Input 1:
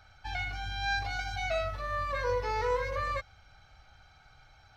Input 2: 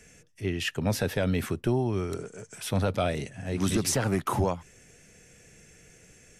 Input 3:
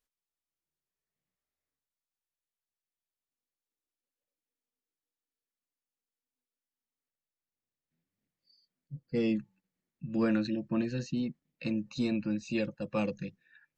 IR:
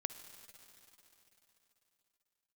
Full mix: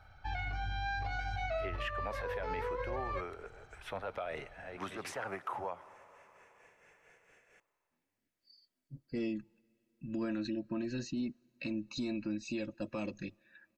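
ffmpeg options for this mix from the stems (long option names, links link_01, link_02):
-filter_complex "[0:a]lowpass=frequency=1400:poles=1,volume=-5.5dB[link_01];[1:a]tremolo=f=4.4:d=0.58,acrossover=split=520 2500:gain=0.0794 1 0.0794[link_02][link_03][link_04];[link_02][link_03][link_04]amix=inputs=3:normalize=0,adelay=1200,volume=-1.5dB,asplit=2[link_05][link_06];[link_06]volume=-7.5dB[link_07];[2:a]aecho=1:1:3.1:0.65,acompressor=threshold=-32dB:ratio=2.5,volume=-7.5dB,asplit=3[link_08][link_09][link_10];[link_09]volume=-16.5dB[link_11];[link_10]apad=whole_len=335098[link_12];[link_05][link_12]sidechaincompress=threshold=-53dB:ratio=8:attack=39:release=134[link_13];[link_01][link_08]amix=inputs=2:normalize=0,acontrast=72,alimiter=level_in=4.5dB:limit=-24dB:level=0:latency=1:release=72,volume=-4.5dB,volume=0dB[link_14];[3:a]atrim=start_sample=2205[link_15];[link_07][link_11]amix=inputs=2:normalize=0[link_16];[link_16][link_15]afir=irnorm=-1:irlink=0[link_17];[link_13][link_14][link_17]amix=inputs=3:normalize=0,alimiter=level_in=4.5dB:limit=-24dB:level=0:latency=1:release=105,volume=-4.5dB"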